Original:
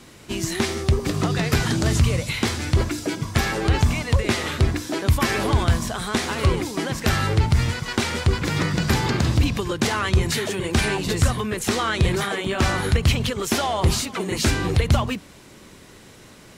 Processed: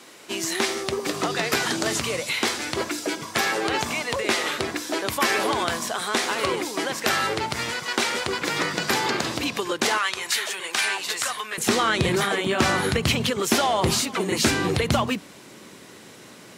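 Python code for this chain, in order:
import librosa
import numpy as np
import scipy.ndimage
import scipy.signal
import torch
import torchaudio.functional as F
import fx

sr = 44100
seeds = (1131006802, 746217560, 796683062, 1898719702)

y = fx.highpass(x, sr, hz=fx.steps((0.0, 380.0), (9.98, 970.0), (11.58, 170.0)), slope=12)
y = F.gain(torch.from_numpy(y), 2.0).numpy()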